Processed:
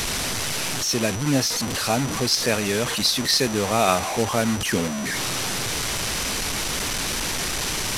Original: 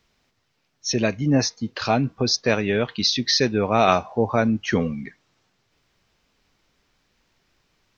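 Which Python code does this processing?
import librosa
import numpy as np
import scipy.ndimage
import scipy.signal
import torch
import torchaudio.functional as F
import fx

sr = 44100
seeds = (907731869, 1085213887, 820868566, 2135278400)

y = fx.delta_mod(x, sr, bps=64000, step_db=-19.0)
y = fx.high_shelf(y, sr, hz=4900.0, db=5.5)
y = y + 10.0 ** (-35.0 / 20.0) * np.sin(2.0 * np.pi * 5900.0 * np.arange(len(y)) / sr)
y = y * 10.0 ** (-2.5 / 20.0)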